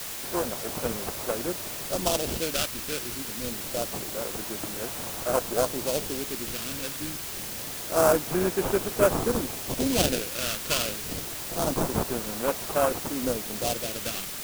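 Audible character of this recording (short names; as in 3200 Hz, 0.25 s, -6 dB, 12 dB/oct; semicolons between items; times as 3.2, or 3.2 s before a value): aliases and images of a low sample rate 2000 Hz, jitter 20%; phasing stages 2, 0.26 Hz, lowest notch 790–4500 Hz; a quantiser's noise floor 6-bit, dither triangular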